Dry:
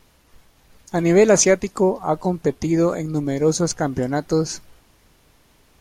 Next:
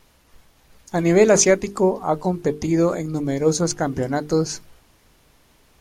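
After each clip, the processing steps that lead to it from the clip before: hum notches 50/100/150/200/250/300/350/400/450 Hz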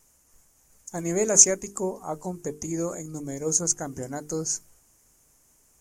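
resonant high shelf 5.2 kHz +10.5 dB, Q 3; trim -11 dB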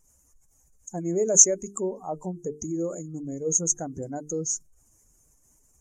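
spectral contrast enhancement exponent 1.7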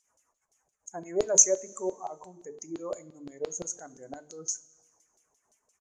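LFO band-pass saw down 5.8 Hz 560–4500 Hz; two-slope reverb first 0.29 s, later 1.6 s, from -16 dB, DRR 12.5 dB; resampled via 32 kHz; trim +8 dB

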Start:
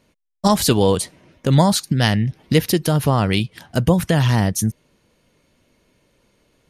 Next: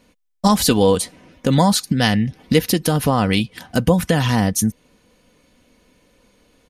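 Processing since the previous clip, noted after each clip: comb 4 ms, depth 43%; in parallel at +0.5 dB: compression, threshold -22 dBFS, peak gain reduction 13 dB; on the sum: trim -2.5 dB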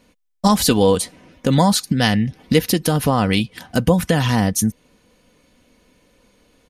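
no audible change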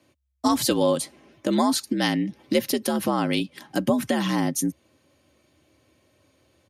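frequency shift +66 Hz; trim -6.5 dB

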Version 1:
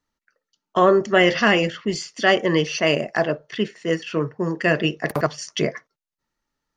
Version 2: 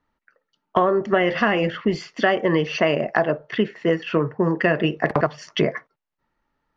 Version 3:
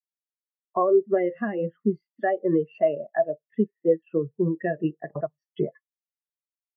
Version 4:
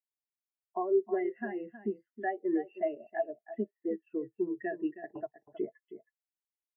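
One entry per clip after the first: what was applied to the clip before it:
low-pass 2.5 kHz 12 dB/octave; peaking EQ 840 Hz +3 dB 0.83 oct; compression 6:1, threshold -22 dBFS, peak gain reduction 12.5 dB; trim +6.5 dB
spectral contrast expander 2.5:1; trim -8 dB
static phaser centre 800 Hz, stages 8; delay 318 ms -13 dB; trim -6.5 dB

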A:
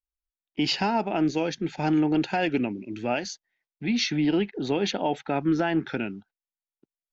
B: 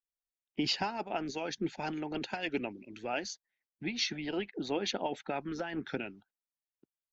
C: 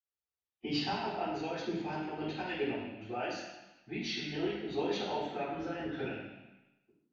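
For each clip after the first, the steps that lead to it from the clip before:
harmonic-percussive split harmonic -13 dB; trim -4 dB
reverberation RT60 1.0 s, pre-delay 47 ms

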